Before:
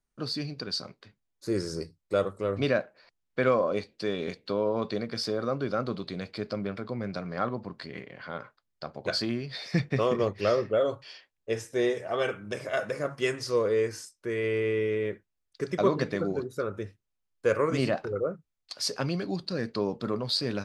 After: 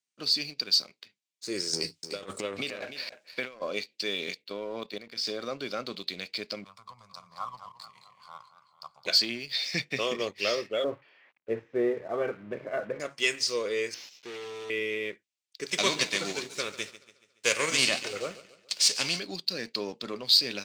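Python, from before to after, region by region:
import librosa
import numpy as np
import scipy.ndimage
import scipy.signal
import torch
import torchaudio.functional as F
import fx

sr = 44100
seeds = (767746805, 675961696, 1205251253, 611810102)

y = fx.chain(x, sr, fx.transient(attack_db=-6, sustain_db=11),
    fx.over_compress(threshold_db=-30.0, ratio=-0.5),
    fx.echo_single(ms=299, db=-10.0), at=(1.73, 3.62))
y = fx.chain(y, sr, fx.lowpass(hz=3800.0, slope=6),
    fx.level_steps(step_db=10), at=(4.42, 5.27))
y = fx.chain(y, sr, fx.curve_eq(hz=(110.0, 170.0, 250.0, 350.0, 640.0, 1100.0, 1600.0, 2800.0, 11000.0), db=(0, -10, -24, -30, -12, 11, -21, -18, 7)),
    fx.echo_warbled(ms=218, feedback_pct=61, rate_hz=2.8, cents=116, wet_db=-10), at=(6.64, 9.05))
y = fx.chain(y, sr, fx.crossing_spikes(level_db=-28.5),
    fx.lowpass(hz=1500.0, slope=24),
    fx.low_shelf(hz=400.0, db=10.5), at=(10.84, 13.0))
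y = fx.chain(y, sr, fx.delta_mod(bps=32000, step_db=-48.5),
    fx.overload_stage(gain_db=32.0), at=(13.94, 14.7))
y = fx.envelope_flatten(y, sr, power=0.6, at=(15.67, 19.18), fade=0.02)
y = fx.echo_feedback(y, sr, ms=141, feedback_pct=56, wet_db=-15, at=(15.67, 19.18), fade=0.02)
y = scipy.signal.sosfilt(scipy.signal.butter(2, 220.0, 'highpass', fs=sr, output='sos'), y)
y = fx.band_shelf(y, sr, hz=4300.0, db=14.5, octaves=2.4)
y = fx.leveller(y, sr, passes=1)
y = F.gain(torch.from_numpy(y), -9.0).numpy()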